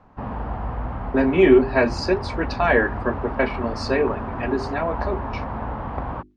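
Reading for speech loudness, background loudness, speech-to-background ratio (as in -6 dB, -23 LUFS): -21.5 LUFS, -30.5 LUFS, 9.0 dB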